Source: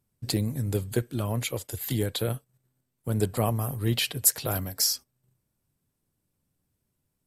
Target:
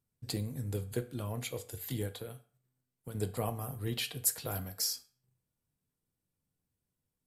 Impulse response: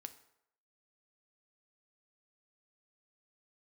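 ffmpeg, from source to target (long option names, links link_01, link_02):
-filter_complex "[0:a]asettb=1/sr,asplit=3[link_01][link_02][link_03];[link_01]atrim=end=2.074[link_04];[link_02]atrim=start=2.07:end=3.15,asetpts=PTS-STARTPTS,afade=type=in:duration=0.004:curve=qsin,afade=type=out:start_time=1.076:duration=0.004:curve=qsin,acrossover=split=1800|7100[link_05][link_06][link_07];[link_05]acompressor=threshold=-33dB:ratio=4[link_08];[link_06]acompressor=threshold=-42dB:ratio=4[link_09];[link_07]acompressor=threshold=-46dB:ratio=4[link_10];[link_08][link_09][link_10]amix=inputs=3:normalize=0[link_11];[link_03]atrim=start=3.146[link_12];[link_04][link_11]acrossfade=duration=0.004:curve1=hsin:curve2=qsin[link_13];[link_13][link_12]acrossfade=duration=0.004:curve1=qsin:curve2=hsin[link_14];[1:a]atrim=start_sample=2205,asetrate=74970,aresample=44100[link_15];[link_14][link_15]afir=irnorm=-1:irlink=0,volume=1.5dB"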